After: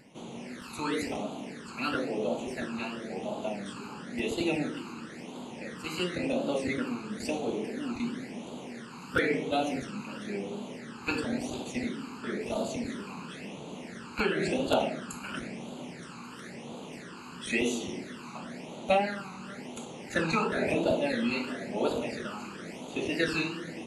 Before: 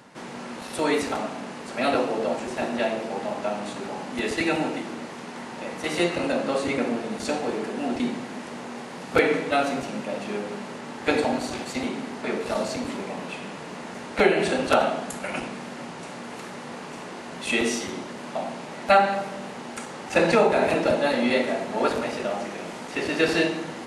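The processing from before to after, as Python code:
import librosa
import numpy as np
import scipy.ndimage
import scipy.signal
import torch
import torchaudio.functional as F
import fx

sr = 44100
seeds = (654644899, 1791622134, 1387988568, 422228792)

y = x + 10.0 ** (-22.5 / 20.0) * np.pad(x, (int(578 * sr / 1000.0), 0))[:len(x)]
y = fx.phaser_stages(y, sr, stages=12, low_hz=580.0, high_hz=1800.0, hz=0.97, feedback_pct=25)
y = fx.wow_flutter(y, sr, seeds[0], rate_hz=2.1, depth_cents=66.0)
y = y * 10.0 ** (-3.5 / 20.0)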